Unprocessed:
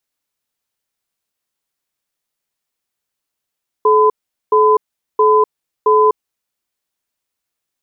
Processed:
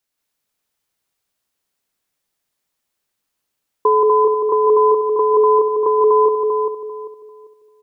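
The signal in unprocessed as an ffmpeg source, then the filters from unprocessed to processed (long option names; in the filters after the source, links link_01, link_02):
-f lavfi -i "aevalsrc='0.299*(sin(2*PI*429*t)+sin(2*PI*1010*t))*clip(min(mod(t,0.67),0.25-mod(t,0.67))/0.005,0,1)':duration=2.27:sample_rate=44100"
-filter_complex "[0:a]asplit=2[link_01][link_02];[link_02]aecho=0:1:177.8|244.9:1|0.282[link_03];[link_01][link_03]amix=inputs=2:normalize=0,acompressor=threshold=-10dB:ratio=6,asplit=2[link_04][link_05];[link_05]adelay=394,lowpass=frequency=910:poles=1,volume=-3.5dB,asplit=2[link_06][link_07];[link_07]adelay=394,lowpass=frequency=910:poles=1,volume=0.32,asplit=2[link_08][link_09];[link_09]adelay=394,lowpass=frequency=910:poles=1,volume=0.32,asplit=2[link_10][link_11];[link_11]adelay=394,lowpass=frequency=910:poles=1,volume=0.32[link_12];[link_06][link_08][link_10][link_12]amix=inputs=4:normalize=0[link_13];[link_04][link_13]amix=inputs=2:normalize=0"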